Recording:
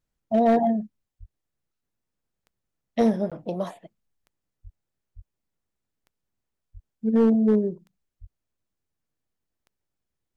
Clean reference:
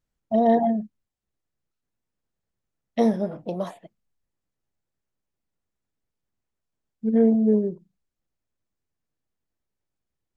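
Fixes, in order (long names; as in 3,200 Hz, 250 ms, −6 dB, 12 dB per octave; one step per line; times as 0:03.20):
clipped peaks rebuilt −12.5 dBFS
click removal
high-pass at the plosives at 0:01.19/0:04.63/0:05.15/0:06.73/0:08.20
repair the gap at 0:03.30, 16 ms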